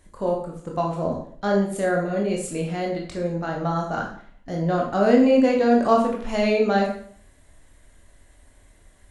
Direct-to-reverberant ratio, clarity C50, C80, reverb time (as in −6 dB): −1.0 dB, 5.0 dB, 9.0 dB, 0.55 s